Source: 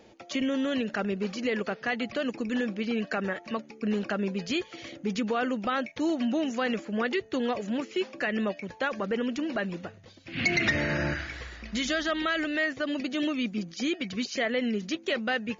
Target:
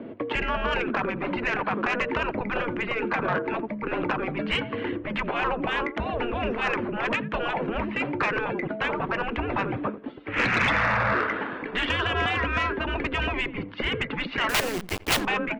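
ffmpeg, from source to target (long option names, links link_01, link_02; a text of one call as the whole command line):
ffmpeg -i in.wav -filter_complex "[0:a]asplit=2[link_01][link_02];[link_02]adynamicsmooth=sensitivity=5.5:basefreq=1800,volume=1dB[link_03];[link_01][link_03]amix=inputs=2:normalize=0,highpass=frequency=420:width_type=q:width=0.5412,highpass=frequency=420:width_type=q:width=1.307,lowpass=frequency=3400:width_type=q:width=0.5176,lowpass=frequency=3400:width_type=q:width=0.7071,lowpass=frequency=3400:width_type=q:width=1.932,afreqshift=-230,equalizer=frequency=250:width_type=o:width=1:gain=11,equalizer=frequency=500:width_type=o:width=1:gain=7,equalizer=frequency=1000:width_type=o:width=1:gain=5,asettb=1/sr,asplit=3[link_04][link_05][link_06];[link_04]atrim=end=14.494[link_07];[link_05]atrim=start=14.49:end=15.21,asetpts=PTS-STARTPTS,afade=type=in:duration=0.004:curve=qsin,afade=type=out:start_time=0.716:duration=0.004:curve=qsin,acrusher=bits=3:dc=4:mix=0:aa=0.000001[link_08];[link_06]atrim=start=15.206[link_09];[link_07][link_08]acrossfade=duration=0.004:curve1=hsin:curve2=qsin[link_10];[link_10][link_09]acrossfade=duration=0.004:curve1=qsin:curve2=hsin,asplit=2[link_11][link_12];[link_12]adelay=86,lowpass=frequency=1500:poles=1,volume=-19.5dB,asplit=2[link_13][link_14];[link_14]adelay=86,lowpass=frequency=1500:poles=1,volume=0.23[link_15];[link_11][link_13][link_15]amix=inputs=3:normalize=0,afftfilt=real='re*lt(hypot(re,im),0.282)':imag='im*lt(hypot(re,im),0.282)':win_size=1024:overlap=0.75,asoftclip=type=tanh:threshold=-19dB,volume=5dB" out.wav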